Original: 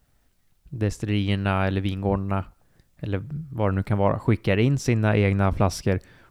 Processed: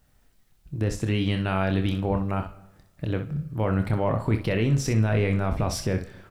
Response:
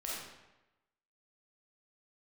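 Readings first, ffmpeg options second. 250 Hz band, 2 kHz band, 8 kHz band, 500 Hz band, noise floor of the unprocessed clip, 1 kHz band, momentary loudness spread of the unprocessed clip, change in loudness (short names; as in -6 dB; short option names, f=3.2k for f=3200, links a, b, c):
-1.5 dB, -2.5 dB, +1.5 dB, -2.5 dB, -65 dBFS, -3.0 dB, 10 LU, -2.0 dB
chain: -filter_complex "[0:a]alimiter=limit=-15.5dB:level=0:latency=1:release=14,aecho=1:1:27|63:0.376|0.316,asplit=2[a][b];[1:a]atrim=start_sample=2205[c];[b][c]afir=irnorm=-1:irlink=0,volume=-16dB[d];[a][d]amix=inputs=2:normalize=0"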